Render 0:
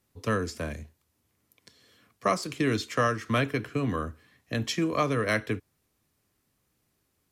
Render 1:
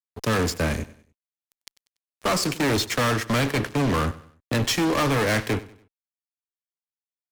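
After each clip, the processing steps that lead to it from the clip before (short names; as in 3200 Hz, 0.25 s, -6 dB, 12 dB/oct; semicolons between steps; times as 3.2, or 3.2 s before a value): fuzz box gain 36 dB, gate -43 dBFS; feedback echo 96 ms, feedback 38%, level -18 dB; gain -6.5 dB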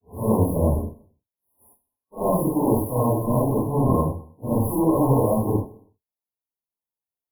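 phase scrambler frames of 0.2 s; FFT band-reject 1100–9800 Hz; gain +4 dB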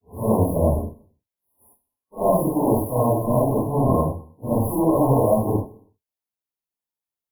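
dynamic EQ 660 Hz, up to +7 dB, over -40 dBFS, Q 3.8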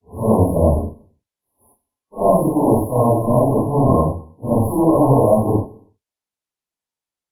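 LPF 10000 Hz 12 dB/oct; gain +4.5 dB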